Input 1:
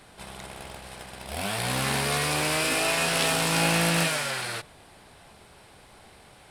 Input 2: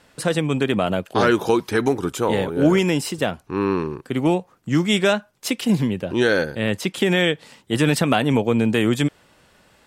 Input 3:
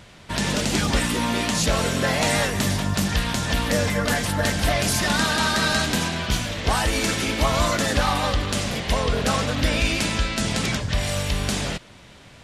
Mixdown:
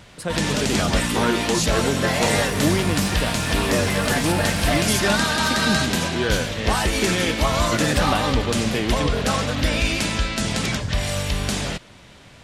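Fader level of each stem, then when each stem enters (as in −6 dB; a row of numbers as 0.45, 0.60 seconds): −5.0, −6.0, +0.5 decibels; 0.75, 0.00, 0.00 seconds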